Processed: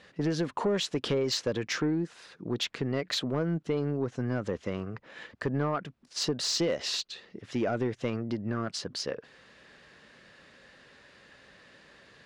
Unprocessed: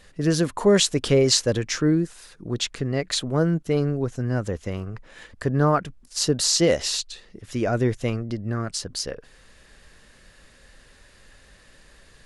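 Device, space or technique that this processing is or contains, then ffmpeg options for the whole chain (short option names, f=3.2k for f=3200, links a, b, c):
AM radio: -af "highpass=150,lowpass=4.2k,acompressor=threshold=-24dB:ratio=5,asoftclip=type=tanh:threshold=-19.5dB"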